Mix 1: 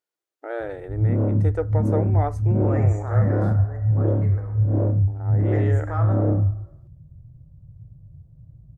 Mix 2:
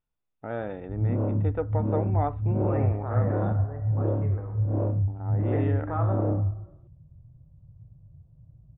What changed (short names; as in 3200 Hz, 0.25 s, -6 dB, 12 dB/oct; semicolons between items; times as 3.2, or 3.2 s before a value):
first voice: remove brick-wall FIR high-pass 290 Hz; second voice: remove weighting filter A; master: add rippled Chebyshev low-pass 3700 Hz, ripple 6 dB